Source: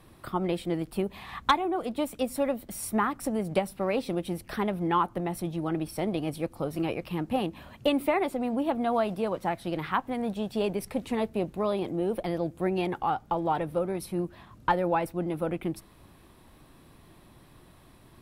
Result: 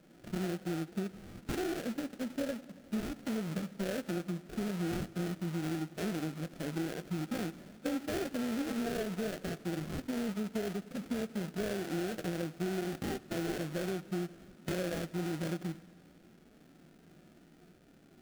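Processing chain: FFT band-pass 150–1500 Hz; sample-rate reducer 1.1 kHz, jitter 20%; peaking EQ 880 Hz -8 dB 0.37 oct; harmonic-percussive split percussive -16 dB; compression, threshold -34 dBFS, peak gain reduction 10.5 dB; modulated delay 92 ms, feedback 79%, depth 74 cents, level -23.5 dB; trim +2 dB

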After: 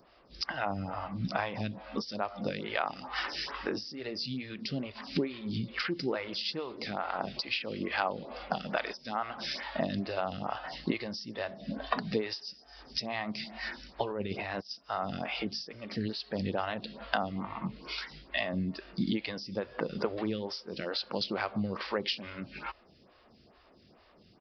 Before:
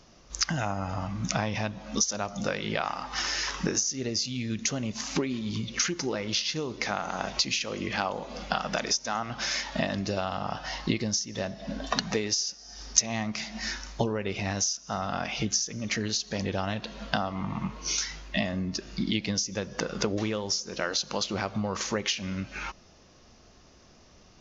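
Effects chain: high-pass 77 Hz 6 dB/octave; 14.11–14.71 s: compressor with a negative ratio -32 dBFS, ratio -0.5; resampled via 11.025 kHz; lamp-driven phase shifter 2.3 Hz

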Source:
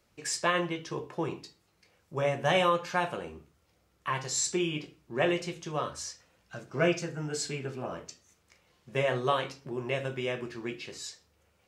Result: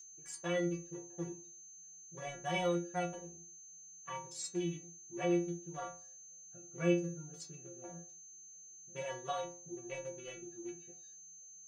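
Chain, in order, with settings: local Wiener filter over 41 samples; whistle 6.3 kHz -38 dBFS; inharmonic resonator 170 Hz, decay 0.44 s, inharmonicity 0.008; trim +4 dB

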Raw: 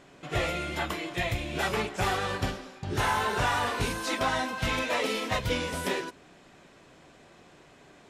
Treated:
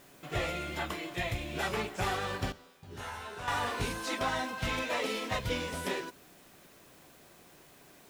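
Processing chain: in parallel at -5.5 dB: word length cut 8-bit, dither triangular; 2.52–3.48 s: on the sum: feedback comb 82 Hz, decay 0.42 s, harmonics all, mix 90%; trim -8 dB

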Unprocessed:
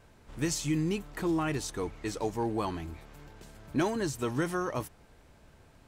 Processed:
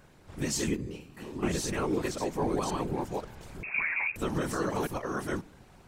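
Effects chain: chunks repeated in reverse 541 ms, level -3 dB; peak limiter -22.5 dBFS, peak gain reduction 7 dB; 0.76–1.43 s: feedback comb 76 Hz, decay 0.6 s, harmonics all, mix 90%; whisper effect; on a send at -22 dB: reverberation RT60 0.85 s, pre-delay 5 ms; 3.63–4.16 s: on the sum: frequency inversion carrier 2.6 kHz; trim +1.5 dB

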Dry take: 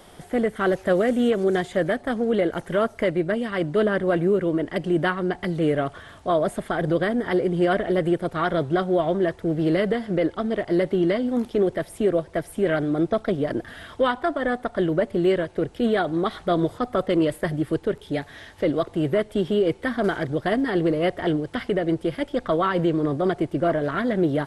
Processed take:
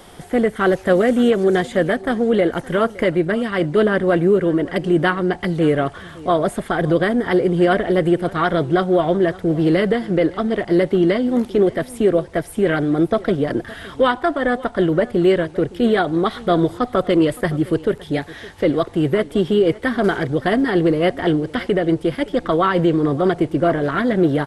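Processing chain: band-stop 620 Hz, Q 12; delay 565 ms -20.5 dB; trim +5.5 dB

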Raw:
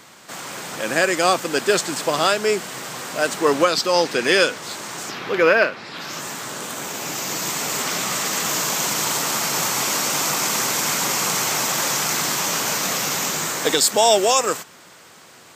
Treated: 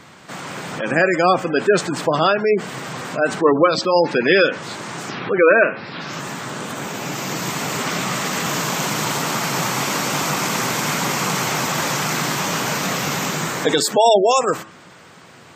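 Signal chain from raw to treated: de-hum 109 Hz, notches 31; spectral gate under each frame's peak -20 dB strong; tone controls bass +7 dB, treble -8 dB; trim +3 dB

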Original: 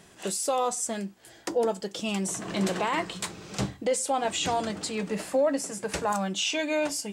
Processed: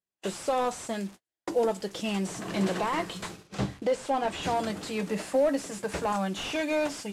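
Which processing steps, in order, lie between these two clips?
one-bit delta coder 64 kbps, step -44 dBFS; gate -41 dBFS, range -47 dB; 3.47–4.43 s: treble shelf 9.2 kHz -11 dB

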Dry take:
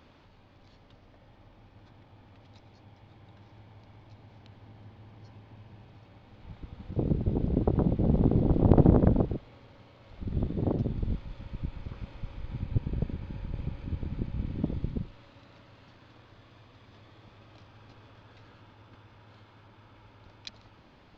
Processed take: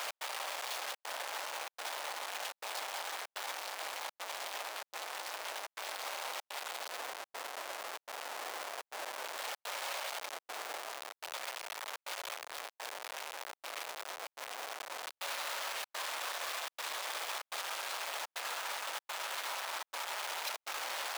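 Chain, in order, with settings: one-bit comparator; high-pass 620 Hz 24 dB/octave; peak limiter -32 dBFS, peak gain reduction 9.5 dB; trance gate "x.xxxxxxx.xxxxx" 143 bpm -60 dB; trim +4 dB

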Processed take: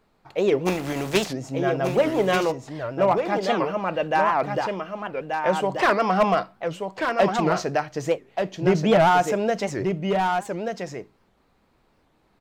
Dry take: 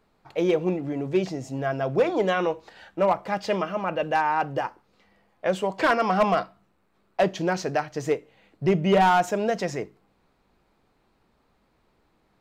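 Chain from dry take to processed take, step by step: 0.65–1.32 s: spectral contrast reduction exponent 0.57; delay 1183 ms -5.5 dB; warped record 78 rpm, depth 250 cents; trim +1.5 dB

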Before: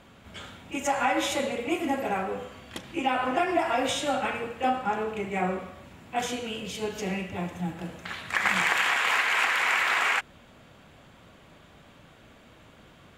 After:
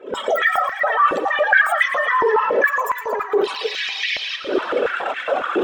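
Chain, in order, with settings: spectral contrast enhancement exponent 2.3; recorder AGC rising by 66 dB/s; high-order bell 2.6 kHz -14 dB 1.3 oct; in parallel at +3 dB: peak limiter -24.5 dBFS, peak gain reduction 11 dB; on the sum: flange 0.29 Hz, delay 7 ms, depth 2.5 ms, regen -71%; on a send: tape echo 267 ms, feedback 76%, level -9.5 dB, low-pass 5.7 kHz; on the sum: speed mistake 33 rpm record played at 78 rpm; step-sequenced high-pass 7.2 Hz 390–2000 Hz

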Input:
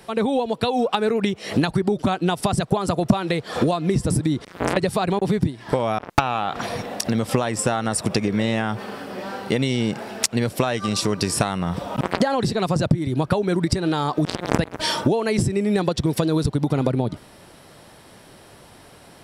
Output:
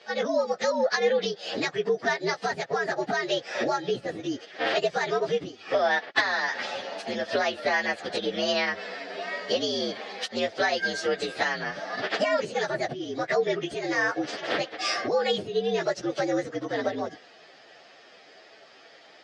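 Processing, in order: frequency axis rescaled in octaves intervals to 119%; cabinet simulation 430–5400 Hz, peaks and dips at 460 Hz +3 dB, 670 Hz +5 dB, 990 Hz -9 dB, 1.8 kHz +8 dB, 3.3 kHz +6 dB, 4.8 kHz +7 dB

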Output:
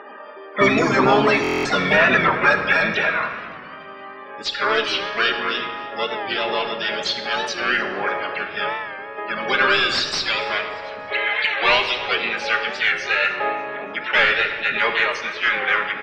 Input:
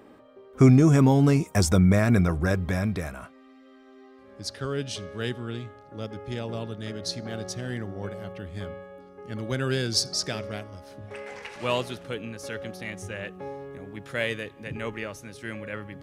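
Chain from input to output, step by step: high-pass 1.5 kHz 6 dB/octave; level-controlled noise filter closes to 2.6 kHz, open at -30.5 dBFS; treble shelf 2.6 kHz +11.5 dB; compression 1.5:1, threshold -34 dBFS, peak gain reduction 8.5 dB; loudest bins only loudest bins 32; harmony voices -4 st -6 dB, +7 st -6 dB; overdrive pedal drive 21 dB, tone 3.1 kHz, clips at -10.5 dBFS; distance through air 220 m; on a send: feedback delay 292 ms, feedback 41%, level -21 dB; on the sum: simulated room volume 2400 m³, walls mixed, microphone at 1.3 m; buffer glitch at 1.42 s, samples 1024, times 9; warped record 45 rpm, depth 100 cents; trim +8 dB

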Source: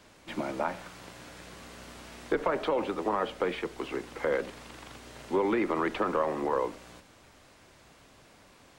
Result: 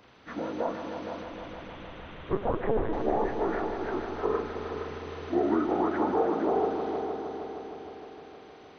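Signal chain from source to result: frequency axis rescaled in octaves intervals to 77%; 1.23–2.93 s: LPC vocoder at 8 kHz pitch kept; multi-head delay 155 ms, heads all three, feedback 64%, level -11 dB; trim +2 dB

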